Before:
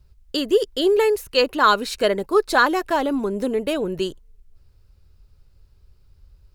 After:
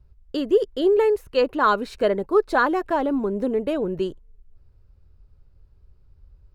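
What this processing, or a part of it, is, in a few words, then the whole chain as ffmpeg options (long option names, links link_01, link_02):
through cloth: -af "highshelf=frequency=2500:gain=-16"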